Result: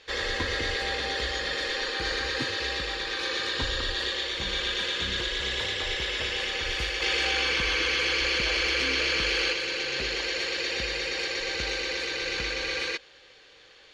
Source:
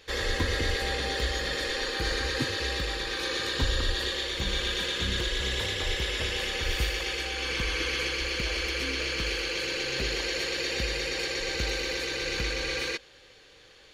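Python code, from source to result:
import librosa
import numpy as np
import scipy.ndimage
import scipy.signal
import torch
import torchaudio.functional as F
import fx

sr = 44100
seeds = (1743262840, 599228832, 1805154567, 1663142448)

y = scipy.signal.sosfilt(scipy.signal.butter(2, 5800.0, 'lowpass', fs=sr, output='sos'), x)
y = fx.low_shelf(y, sr, hz=320.0, db=-9.0)
y = fx.env_flatten(y, sr, amount_pct=100, at=(7.01, 9.52), fade=0.02)
y = F.gain(torch.from_numpy(y), 2.0).numpy()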